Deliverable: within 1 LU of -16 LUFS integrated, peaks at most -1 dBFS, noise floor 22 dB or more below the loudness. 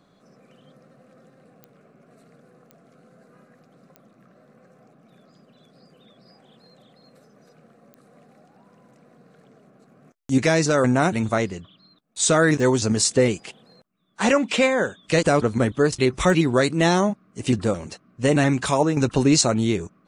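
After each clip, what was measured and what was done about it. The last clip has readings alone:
clicks 6; loudness -20.5 LUFS; peak -6.0 dBFS; loudness target -16.0 LUFS
-> de-click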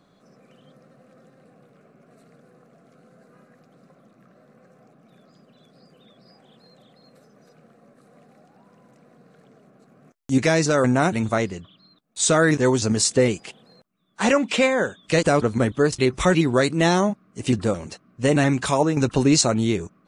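clicks 0; loudness -20.5 LUFS; peak -6.0 dBFS; loudness target -16.0 LUFS
-> gain +4.5 dB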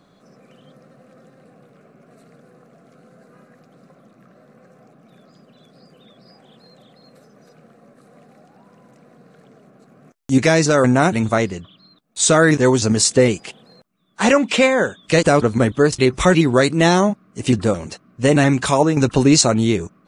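loudness -16.0 LUFS; peak -1.5 dBFS; noise floor -55 dBFS

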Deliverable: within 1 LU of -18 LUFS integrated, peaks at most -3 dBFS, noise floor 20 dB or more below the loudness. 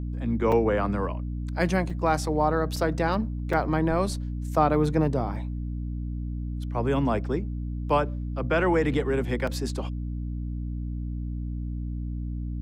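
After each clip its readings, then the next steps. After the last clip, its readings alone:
dropouts 5; longest dropout 4.1 ms; hum 60 Hz; harmonics up to 300 Hz; hum level -29 dBFS; loudness -27.5 LUFS; peak -8.0 dBFS; loudness target -18.0 LUFS
-> interpolate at 0.52/1.9/2.76/3.53/9.47, 4.1 ms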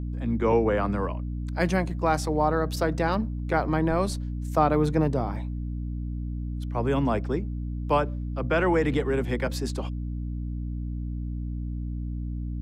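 dropouts 0; hum 60 Hz; harmonics up to 300 Hz; hum level -29 dBFS
-> notches 60/120/180/240/300 Hz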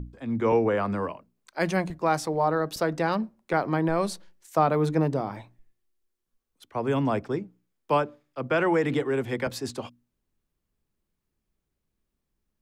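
hum none; loudness -27.0 LUFS; peak -8.0 dBFS; loudness target -18.0 LUFS
-> gain +9 dB; limiter -3 dBFS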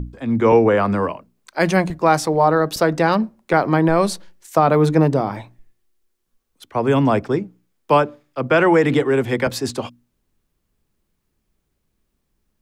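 loudness -18.0 LUFS; peak -3.0 dBFS; noise floor -73 dBFS

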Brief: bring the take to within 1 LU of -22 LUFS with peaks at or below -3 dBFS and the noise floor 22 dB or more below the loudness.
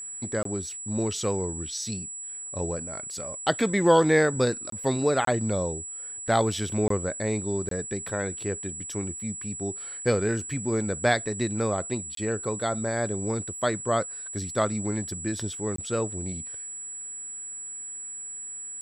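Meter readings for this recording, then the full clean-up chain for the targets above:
dropouts 7; longest dropout 23 ms; steady tone 7800 Hz; tone level -35 dBFS; loudness -28.0 LUFS; peak -7.5 dBFS; loudness target -22.0 LUFS
-> interpolate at 0.43/4.7/5.25/6.88/7.69/12.15/15.76, 23 ms; notch 7800 Hz, Q 30; gain +6 dB; limiter -3 dBFS

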